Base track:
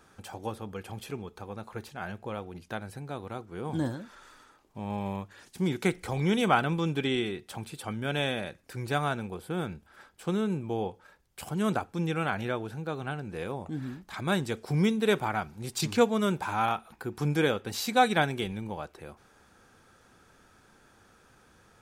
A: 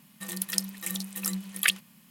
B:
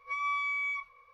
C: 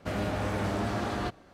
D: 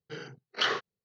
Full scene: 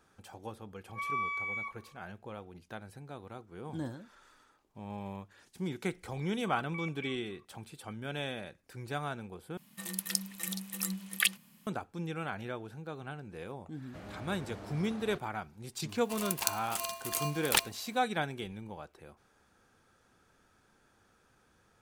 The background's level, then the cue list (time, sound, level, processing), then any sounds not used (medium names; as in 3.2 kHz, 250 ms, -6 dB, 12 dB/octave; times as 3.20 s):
base track -8 dB
0.88 s: add B + peaking EQ 4.3 kHz -9.5 dB 1.7 oct
6.32 s: add B -15 dB + step-sequenced low-pass 7.1 Hz 210–2800 Hz
9.57 s: replace with A -4 dB
13.88 s: add C -16 dB
15.89 s: add A -3.5 dB + polarity switched at an audio rate 870 Hz
not used: D